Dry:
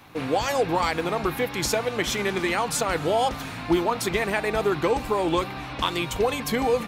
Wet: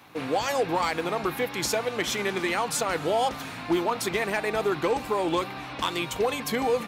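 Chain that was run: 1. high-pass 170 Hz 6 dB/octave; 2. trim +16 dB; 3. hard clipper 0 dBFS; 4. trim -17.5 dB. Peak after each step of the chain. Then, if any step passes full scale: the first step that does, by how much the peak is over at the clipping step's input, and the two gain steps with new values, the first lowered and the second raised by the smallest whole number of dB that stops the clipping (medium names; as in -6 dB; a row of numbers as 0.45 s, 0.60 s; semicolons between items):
-10.0 dBFS, +6.0 dBFS, 0.0 dBFS, -17.5 dBFS; step 2, 6.0 dB; step 2 +10 dB, step 4 -11.5 dB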